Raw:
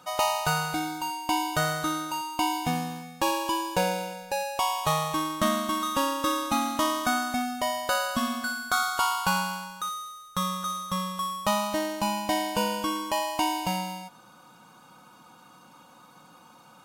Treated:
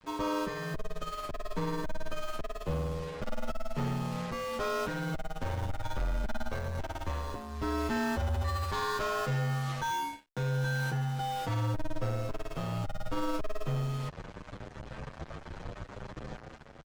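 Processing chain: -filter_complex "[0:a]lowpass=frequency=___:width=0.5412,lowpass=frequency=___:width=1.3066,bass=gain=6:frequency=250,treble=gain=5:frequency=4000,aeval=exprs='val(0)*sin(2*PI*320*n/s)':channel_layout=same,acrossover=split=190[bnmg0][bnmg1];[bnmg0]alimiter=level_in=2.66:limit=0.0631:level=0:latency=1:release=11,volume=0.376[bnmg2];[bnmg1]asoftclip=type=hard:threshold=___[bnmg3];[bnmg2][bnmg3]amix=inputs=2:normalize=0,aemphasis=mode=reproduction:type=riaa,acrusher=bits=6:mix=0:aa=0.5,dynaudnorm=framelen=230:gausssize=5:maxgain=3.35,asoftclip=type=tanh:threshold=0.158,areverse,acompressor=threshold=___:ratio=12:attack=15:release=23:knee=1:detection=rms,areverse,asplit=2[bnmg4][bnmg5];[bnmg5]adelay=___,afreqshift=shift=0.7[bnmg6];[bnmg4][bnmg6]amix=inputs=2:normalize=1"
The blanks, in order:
7700, 7700, 0.126, 0.0355, 8.2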